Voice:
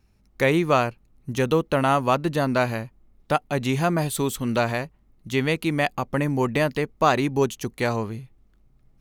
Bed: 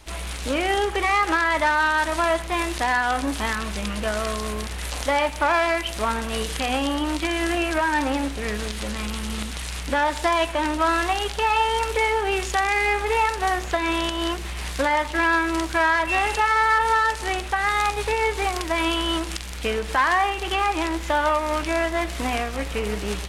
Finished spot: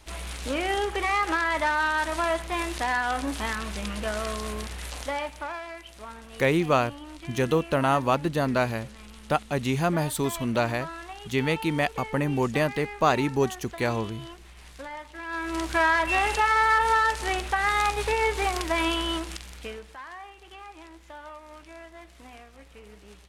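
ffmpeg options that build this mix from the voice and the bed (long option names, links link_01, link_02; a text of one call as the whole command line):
ffmpeg -i stem1.wav -i stem2.wav -filter_complex "[0:a]adelay=6000,volume=-2.5dB[link_01];[1:a]volume=11dB,afade=type=out:start_time=4.62:duration=1:silence=0.223872,afade=type=in:start_time=15.26:duration=0.51:silence=0.16788,afade=type=out:start_time=18.77:duration=1.18:silence=0.1[link_02];[link_01][link_02]amix=inputs=2:normalize=0" out.wav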